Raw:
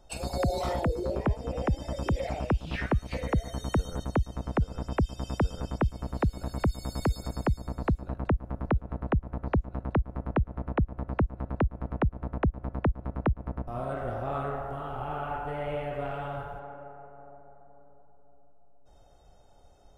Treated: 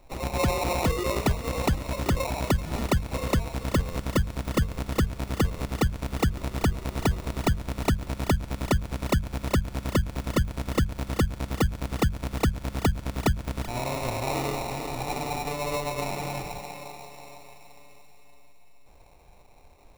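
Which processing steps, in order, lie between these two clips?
sample-rate reduction 1,600 Hz, jitter 0%
mains-hum notches 50/100/150/200 Hz
feedback echo with a high-pass in the loop 384 ms, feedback 64%, high-pass 1,000 Hz, level −12.5 dB
level +3.5 dB

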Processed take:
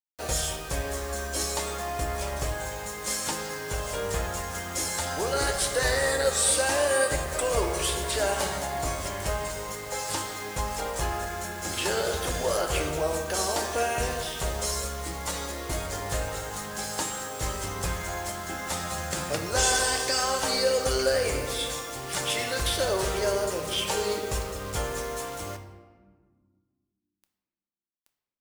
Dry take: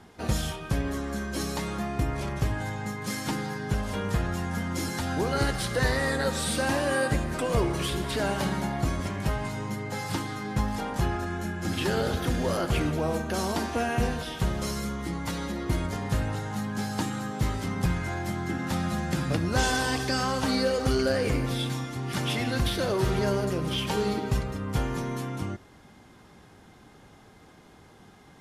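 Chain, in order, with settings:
graphic EQ with 10 bands 125 Hz −10 dB, 250 Hz −12 dB, 500 Hz +5 dB, 8,000 Hz +11 dB
bit reduction 7 bits
convolution reverb RT60 1.7 s, pre-delay 3 ms, DRR 5.5 dB

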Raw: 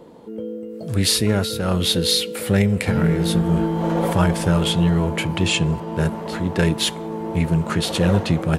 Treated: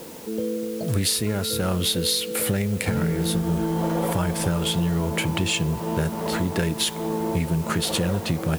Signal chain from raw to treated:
high-shelf EQ 9,500 Hz +10.5 dB
downward compressor, threshold −24 dBFS, peak gain reduction 11.5 dB
background noise white −48 dBFS
level +3.5 dB

